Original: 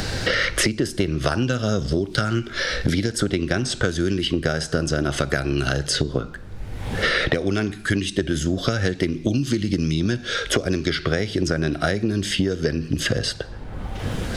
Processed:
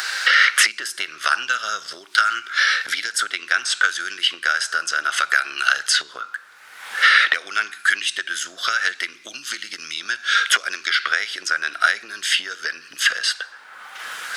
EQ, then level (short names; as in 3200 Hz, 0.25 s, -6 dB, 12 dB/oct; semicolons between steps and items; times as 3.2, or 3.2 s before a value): high shelf 6000 Hz +6.5 dB; dynamic EQ 2800 Hz, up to +4 dB, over -33 dBFS, Q 1.2; resonant high-pass 1400 Hz, resonance Q 2.8; 0.0 dB